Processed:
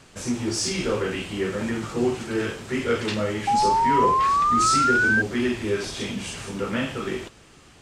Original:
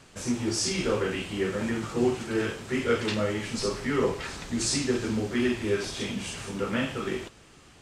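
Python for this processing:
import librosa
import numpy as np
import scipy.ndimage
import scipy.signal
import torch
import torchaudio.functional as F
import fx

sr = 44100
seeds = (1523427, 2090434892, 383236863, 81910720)

p1 = 10.0 ** (-24.0 / 20.0) * np.tanh(x / 10.0 ** (-24.0 / 20.0))
p2 = x + (p1 * librosa.db_to_amplitude(-9.0))
y = fx.spec_paint(p2, sr, seeds[0], shape='rise', start_s=3.47, length_s=1.75, low_hz=800.0, high_hz=1600.0, level_db=-20.0)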